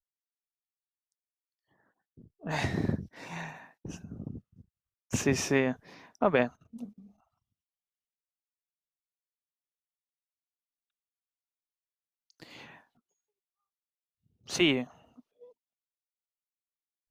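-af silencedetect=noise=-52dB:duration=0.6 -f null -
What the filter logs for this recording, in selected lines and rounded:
silence_start: 0.00
silence_end: 2.17 | silence_duration: 2.17
silence_start: 7.11
silence_end: 12.30 | silence_duration: 5.20
silence_start: 12.81
silence_end: 14.46 | silence_duration: 1.65
silence_start: 15.50
silence_end: 17.10 | silence_duration: 1.61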